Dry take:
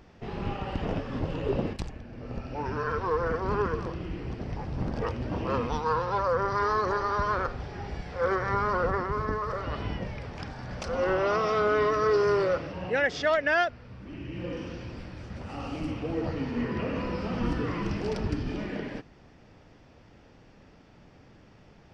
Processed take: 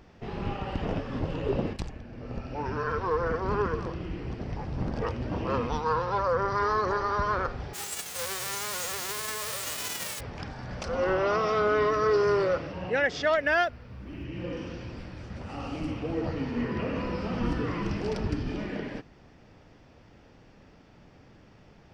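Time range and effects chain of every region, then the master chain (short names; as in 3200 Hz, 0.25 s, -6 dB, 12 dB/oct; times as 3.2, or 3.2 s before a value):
7.73–10.19 spectral whitening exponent 0.1 + HPF 92 Hz + compressor, threshold -29 dBFS
13.38–14.25 bell 66 Hz +7 dB 0.38 oct + short-mantissa float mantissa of 6-bit
whole clip: dry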